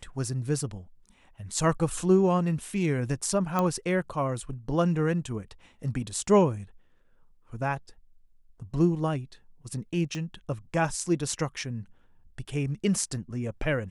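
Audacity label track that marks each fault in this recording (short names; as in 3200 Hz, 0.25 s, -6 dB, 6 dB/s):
3.590000	3.590000	pop -13 dBFS
10.150000	10.150000	pop -23 dBFS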